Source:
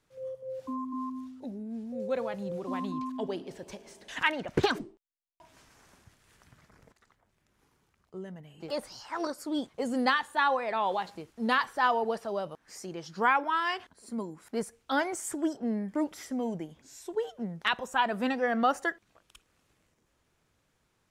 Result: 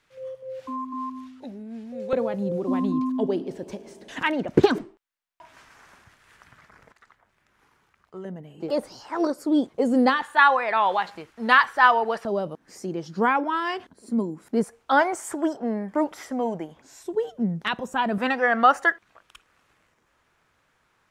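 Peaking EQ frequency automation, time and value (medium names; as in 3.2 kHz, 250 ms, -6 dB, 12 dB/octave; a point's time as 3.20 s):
peaking EQ +11.5 dB 2.5 oct
2.2 kHz
from 2.13 s 280 Hz
from 4.78 s 1.5 kHz
from 8.25 s 350 Hz
from 10.22 s 1.6 kHz
from 12.25 s 250 Hz
from 14.64 s 910 Hz
from 17.03 s 190 Hz
from 18.18 s 1.4 kHz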